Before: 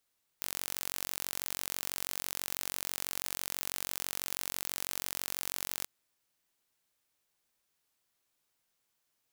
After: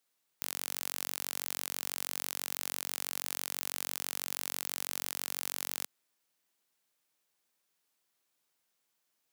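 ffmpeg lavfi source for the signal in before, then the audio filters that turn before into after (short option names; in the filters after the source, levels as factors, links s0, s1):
-f lavfi -i "aevalsrc='0.376*eq(mod(n,957),0)':d=5.44:s=44100"
-af "highpass=150"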